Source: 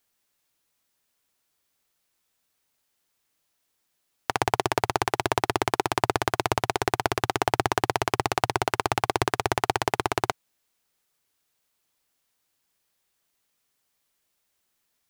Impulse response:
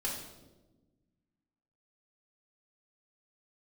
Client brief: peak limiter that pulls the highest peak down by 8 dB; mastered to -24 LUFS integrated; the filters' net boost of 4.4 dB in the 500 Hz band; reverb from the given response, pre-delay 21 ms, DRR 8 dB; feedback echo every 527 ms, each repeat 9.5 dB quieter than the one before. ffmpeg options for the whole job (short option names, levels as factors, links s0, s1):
-filter_complex "[0:a]equalizer=f=500:t=o:g=6,alimiter=limit=0.376:level=0:latency=1,aecho=1:1:527|1054|1581|2108:0.335|0.111|0.0365|0.012,asplit=2[s0][s1];[1:a]atrim=start_sample=2205,adelay=21[s2];[s1][s2]afir=irnorm=-1:irlink=0,volume=0.266[s3];[s0][s3]amix=inputs=2:normalize=0,volume=1.78"